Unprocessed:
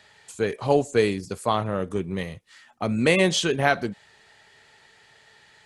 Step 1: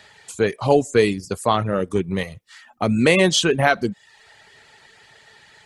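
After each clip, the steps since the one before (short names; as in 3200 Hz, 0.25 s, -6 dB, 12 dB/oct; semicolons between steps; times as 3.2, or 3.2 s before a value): reverb removal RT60 0.56 s; in parallel at -2.5 dB: limiter -15 dBFS, peak gain reduction 10 dB; on the sum: gain +1.5 dB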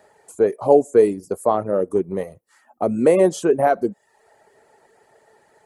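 EQ curve 120 Hz 0 dB, 370 Hz +14 dB, 620 Hz +15 dB, 3500 Hz -11 dB, 11000 Hz +10 dB; gain -11 dB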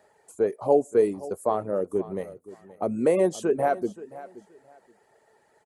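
feedback echo 0.526 s, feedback 22%, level -17.5 dB; gain -6.5 dB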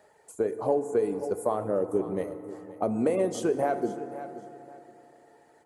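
compressor, threshold -23 dBFS, peak gain reduction 9 dB; FDN reverb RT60 3.3 s, high-frequency decay 0.4×, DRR 10 dB; gain +1 dB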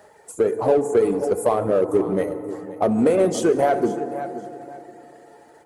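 bin magnitudes rounded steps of 15 dB; in parallel at -6 dB: hard clip -29.5 dBFS, distortion -6 dB; on the sum: gain +6.5 dB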